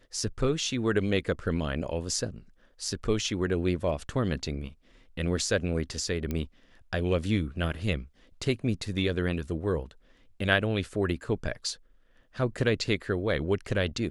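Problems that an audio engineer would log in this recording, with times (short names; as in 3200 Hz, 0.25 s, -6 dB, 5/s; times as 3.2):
6.31 pop -18 dBFS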